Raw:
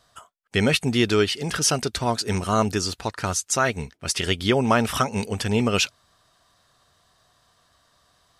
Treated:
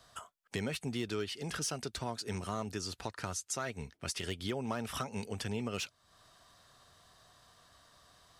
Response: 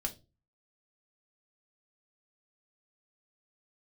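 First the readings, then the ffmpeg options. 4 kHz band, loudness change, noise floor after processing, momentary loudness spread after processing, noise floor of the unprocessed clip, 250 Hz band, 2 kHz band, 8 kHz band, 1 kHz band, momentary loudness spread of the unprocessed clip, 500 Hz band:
−15.0 dB, −15.5 dB, −72 dBFS, 5 LU, −64 dBFS, −15.0 dB, −16.5 dB, −14.0 dB, −16.0 dB, 6 LU, −16.0 dB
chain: -filter_complex "[0:a]acrossover=split=120|870|5800[link_01][link_02][link_03][link_04];[link_03]asoftclip=type=hard:threshold=-21dB[link_05];[link_01][link_02][link_05][link_04]amix=inputs=4:normalize=0,acompressor=threshold=-42dB:ratio=2.5"

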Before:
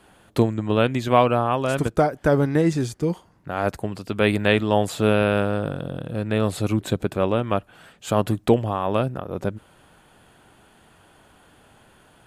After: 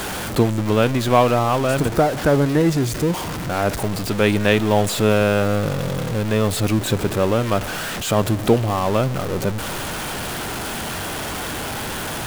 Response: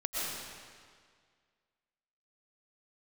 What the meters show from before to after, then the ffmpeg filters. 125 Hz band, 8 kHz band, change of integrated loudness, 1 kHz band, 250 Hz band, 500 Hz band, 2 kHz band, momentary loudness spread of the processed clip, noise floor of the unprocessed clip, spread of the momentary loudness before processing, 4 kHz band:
+4.0 dB, +12.0 dB, +2.5 dB, +3.0 dB, +3.0 dB, +3.0 dB, +4.5 dB, 9 LU, −56 dBFS, 11 LU, +7.0 dB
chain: -filter_complex "[0:a]aeval=exprs='val(0)+0.5*0.0794*sgn(val(0))':channel_layout=same,asplit=2[link_01][link_02];[1:a]atrim=start_sample=2205[link_03];[link_02][link_03]afir=irnorm=-1:irlink=0,volume=-25dB[link_04];[link_01][link_04]amix=inputs=2:normalize=0"

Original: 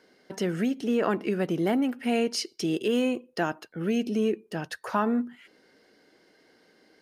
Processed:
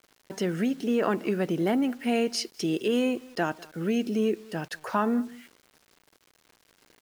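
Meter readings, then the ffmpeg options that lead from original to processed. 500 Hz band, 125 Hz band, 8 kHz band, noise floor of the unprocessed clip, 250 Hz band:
0.0 dB, 0.0 dB, 0.0 dB, −62 dBFS, 0.0 dB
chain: -filter_complex "[0:a]asplit=2[link_01][link_02];[link_02]adelay=198.3,volume=-23dB,highshelf=frequency=4000:gain=-4.46[link_03];[link_01][link_03]amix=inputs=2:normalize=0,acrusher=bits=8:mix=0:aa=0.000001"

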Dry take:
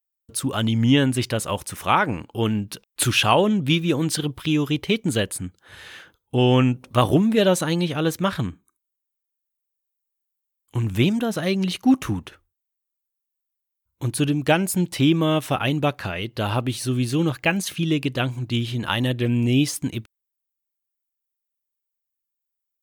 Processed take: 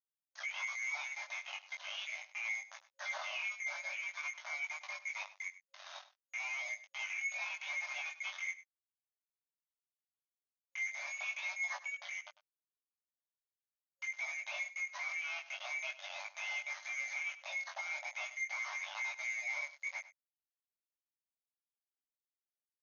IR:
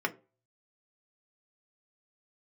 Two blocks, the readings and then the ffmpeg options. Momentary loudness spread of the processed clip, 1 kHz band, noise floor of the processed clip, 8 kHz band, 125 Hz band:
7 LU, −22.5 dB, below −85 dBFS, −17.5 dB, below −40 dB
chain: -af "afftfilt=real='real(if(lt(b,920),b+92*(1-2*mod(floor(b/92),2)),b),0)':imag='imag(if(lt(b,920),b+92*(1-2*mod(floor(b/92),2)),b),0)':win_size=2048:overlap=0.75,deesser=0.5,agate=range=-45dB:threshold=-44dB:ratio=16:detection=peak,highshelf=frequency=3700:gain=-11.5,acompressor=threshold=-38dB:ratio=2,alimiter=level_in=5.5dB:limit=-24dB:level=0:latency=1:release=103,volume=-5.5dB,flanger=delay=9.4:depth=1.3:regen=-1:speed=0.88:shape=triangular,asoftclip=type=hard:threshold=-36.5dB,acrusher=bits=6:mix=0:aa=0.5,flanger=delay=18.5:depth=4:speed=0.42,aecho=1:1:99:0.158,afftfilt=real='re*between(b*sr/4096,540,6700)':imag='im*between(b*sr/4096,540,6700)':win_size=4096:overlap=0.75,volume=3.5dB"

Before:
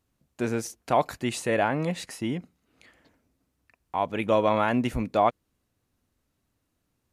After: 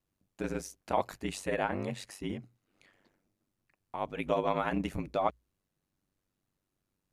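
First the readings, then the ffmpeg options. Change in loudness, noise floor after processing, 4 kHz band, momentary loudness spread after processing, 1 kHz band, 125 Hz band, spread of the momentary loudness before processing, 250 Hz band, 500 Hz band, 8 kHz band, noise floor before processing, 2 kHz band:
−7.5 dB, −85 dBFS, −7.5 dB, 9 LU, −8.0 dB, −7.5 dB, 9 LU, −8.0 dB, −7.5 dB, −7.5 dB, −78 dBFS, −7.5 dB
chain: -af "aeval=exprs='val(0)*sin(2*PI*48*n/s)':channel_layout=same,bandreject=frequency=60:width_type=h:width=6,bandreject=frequency=120:width_type=h:width=6,volume=-4.5dB"

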